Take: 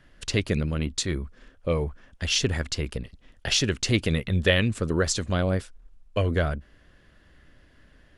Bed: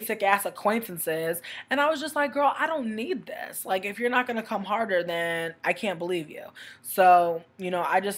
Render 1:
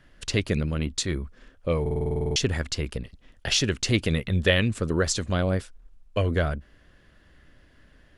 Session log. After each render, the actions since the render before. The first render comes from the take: 1.81 s: stutter in place 0.05 s, 11 plays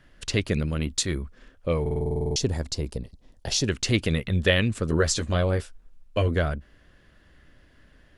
0.59–1.23 s: treble shelf 8 kHz +8 dB; 2.01–3.68 s: high-order bell 2 kHz -10 dB; 4.87–6.28 s: doubling 13 ms -5.5 dB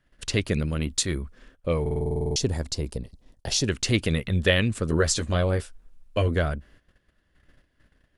gate -52 dBFS, range -13 dB; peaking EQ 9.4 kHz +4 dB 0.46 oct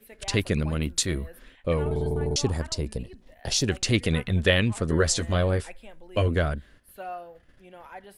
add bed -19.5 dB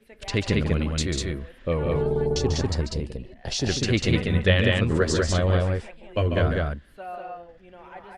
distance through air 86 m; loudspeakers at several distances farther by 49 m -8 dB, 67 m -2 dB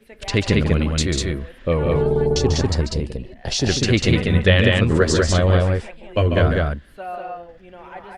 trim +5.5 dB; peak limiter -3 dBFS, peak gain reduction 3 dB

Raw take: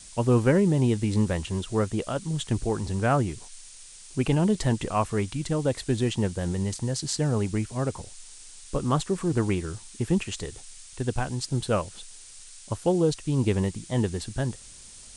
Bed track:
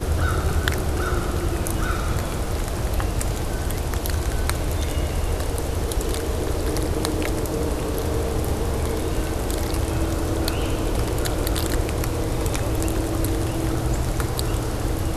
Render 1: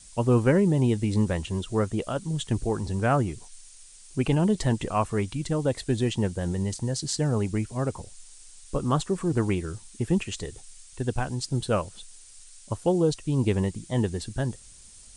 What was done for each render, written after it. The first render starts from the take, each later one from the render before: noise reduction 6 dB, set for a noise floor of -47 dBFS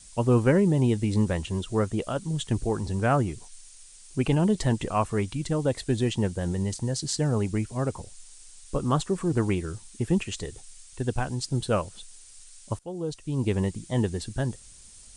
12.79–13.67 s: fade in, from -20 dB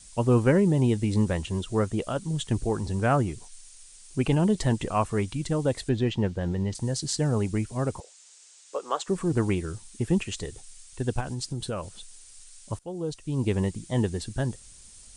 5.89–6.75 s: low-pass 4 kHz; 8.00–9.08 s: Chebyshev band-pass 460–7600 Hz, order 3; 11.20–12.73 s: compression, threshold -27 dBFS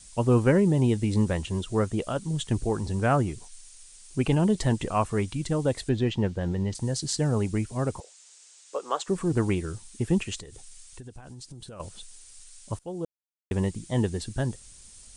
10.40–11.80 s: compression, threshold -40 dBFS; 13.05–13.51 s: mute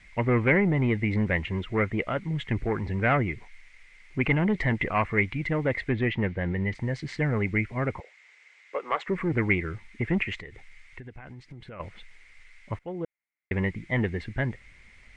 saturation -17.5 dBFS, distortion -16 dB; resonant low-pass 2.1 kHz, resonance Q 12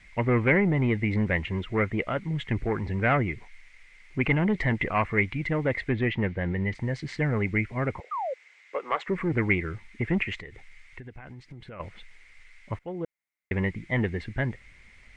8.11–8.34 s: painted sound fall 490–1300 Hz -30 dBFS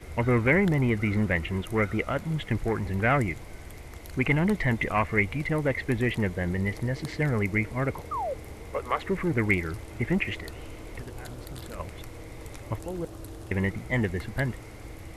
add bed track -18.5 dB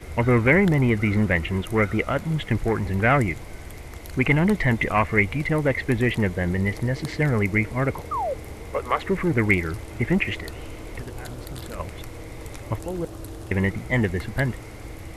trim +4.5 dB

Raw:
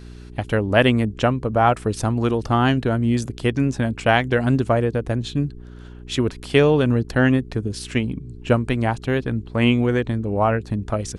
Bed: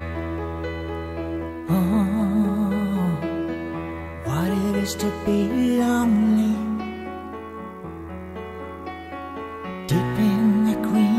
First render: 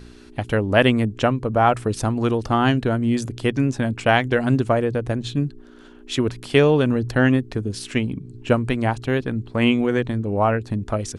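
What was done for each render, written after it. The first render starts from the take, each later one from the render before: de-hum 60 Hz, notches 3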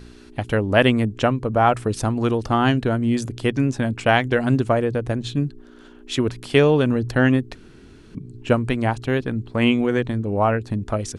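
7.55–8.15 s: room tone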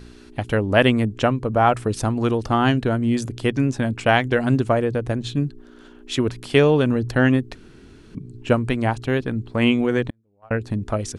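10.10–10.51 s: gate -13 dBFS, range -41 dB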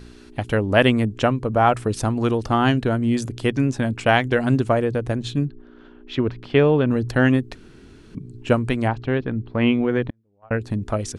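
5.45–6.91 s: distance through air 260 m; 8.88–10.52 s: distance through air 220 m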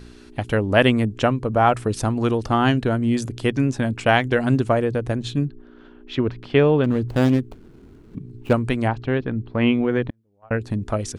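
6.84–8.53 s: median filter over 25 samples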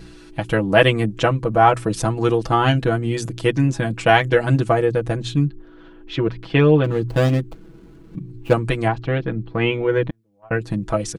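comb 6.1 ms, depth 93%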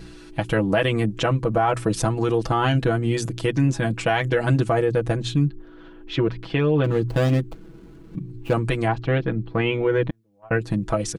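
peak limiter -11 dBFS, peak gain reduction 9.5 dB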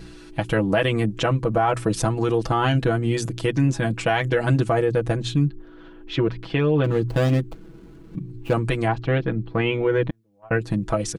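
no audible change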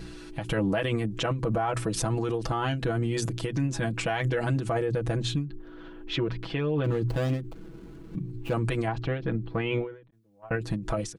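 peak limiter -19 dBFS, peak gain reduction 8 dB; endings held to a fixed fall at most 120 dB/s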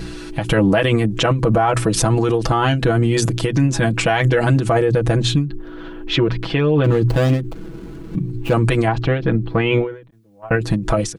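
trim +11.5 dB

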